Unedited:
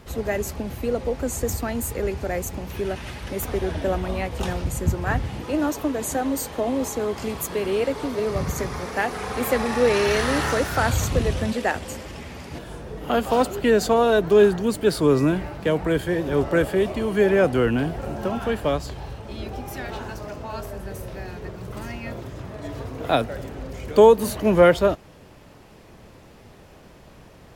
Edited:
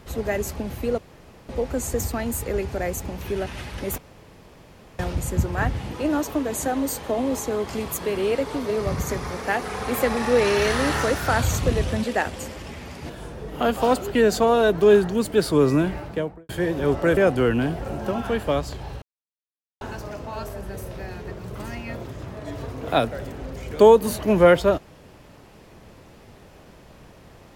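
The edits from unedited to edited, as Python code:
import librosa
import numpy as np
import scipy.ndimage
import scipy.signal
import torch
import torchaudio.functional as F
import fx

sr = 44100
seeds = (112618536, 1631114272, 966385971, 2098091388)

y = fx.studio_fade_out(x, sr, start_s=15.49, length_s=0.49)
y = fx.edit(y, sr, fx.insert_room_tone(at_s=0.98, length_s=0.51),
    fx.room_tone_fill(start_s=3.47, length_s=1.01),
    fx.cut(start_s=16.66, length_s=0.68),
    fx.silence(start_s=19.19, length_s=0.79), tone=tone)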